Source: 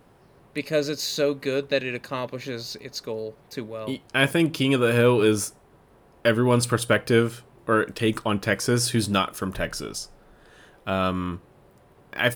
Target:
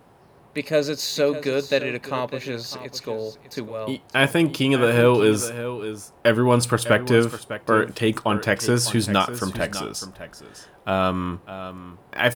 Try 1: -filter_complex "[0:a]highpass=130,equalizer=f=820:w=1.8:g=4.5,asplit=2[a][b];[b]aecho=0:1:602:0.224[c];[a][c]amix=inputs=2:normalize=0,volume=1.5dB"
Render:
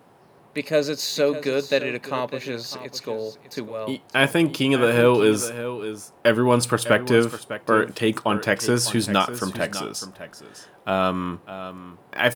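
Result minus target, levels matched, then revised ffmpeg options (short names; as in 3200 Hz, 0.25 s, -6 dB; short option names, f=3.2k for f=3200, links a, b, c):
125 Hz band -3.0 dB
-filter_complex "[0:a]highpass=50,equalizer=f=820:w=1.8:g=4.5,asplit=2[a][b];[b]aecho=0:1:602:0.224[c];[a][c]amix=inputs=2:normalize=0,volume=1.5dB"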